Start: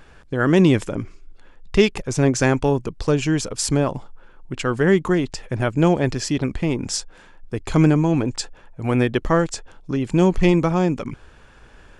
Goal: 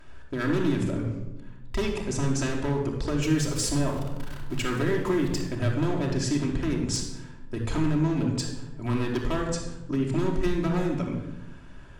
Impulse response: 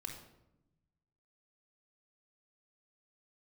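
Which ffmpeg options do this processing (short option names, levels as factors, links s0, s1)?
-filter_complex "[0:a]asettb=1/sr,asplit=3[s0][s1][s2];[s0]atrim=end=3.224[s3];[s1]atrim=start=3.22:end=5.41,asetpts=PTS-STARTPTS,afade=t=in:d=0.004:c=qsin,afade=t=out:st=2.186:d=0.004:c=qsin,aeval=exprs='val(0)+0.5*0.0316*sgn(val(0))':c=same[s4];[s2]atrim=start=5.406[s5];[s3][s4]acrossfade=d=0.004:c1=hsin:c2=qsin[s6];[s6][s5]acrossfade=d=0.004:c1=qsin:c2=hsin,acompressor=threshold=0.126:ratio=5,aeval=exprs='0.168*(abs(mod(val(0)/0.168+3,4)-2)-1)':c=same[s7];[1:a]atrim=start_sample=2205,asetrate=35280,aresample=44100[s8];[s7][s8]afir=irnorm=-1:irlink=0,volume=0.75"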